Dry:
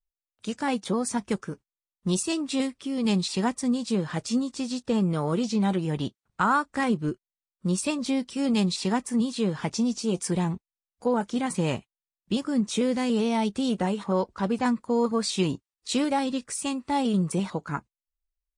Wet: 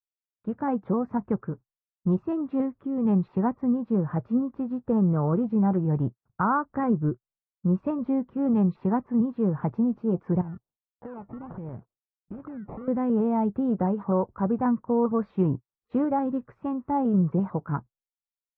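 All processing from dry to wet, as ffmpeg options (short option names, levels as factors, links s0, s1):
-filter_complex "[0:a]asettb=1/sr,asplit=3[s0][s1][s2];[s0]atrim=end=10.414[s3];[s1]atrim=start=10.41:end=12.88,asetpts=PTS-STARTPTS,afade=t=in:d=0.004:c=qsin,afade=t=out:st=2.466:d=0.004:c=qsin,acompressor=threshold=0.0178:ratio=16:attack=3.2:release=140:knee=1:detection=peak,acrusher=samples=22:mix=1:aa=0.000001:lfo=1:lforange=13.2:lforate=1.4[s4];[s2]atrim=start=12.876[s5];[s3][s4]acrossfade=d=0.004:c1=hsin:c2=qsin[s6];[s6][s5]acrossfade=d=0.004:c1=qsin:c2=hsin,lowpass=f=1300:w=0.5412,lowpass=f=1300:w=1.3066,agate=range=0.0224:threshold=0.00158:ratio=3:detection=peak,equalizer=f=120:w=1.8:g=9"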